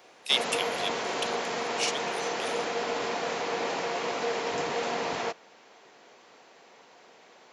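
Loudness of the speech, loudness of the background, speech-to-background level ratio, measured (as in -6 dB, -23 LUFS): -32.0 LUFS, -31.0 LUFS, -1.0 dB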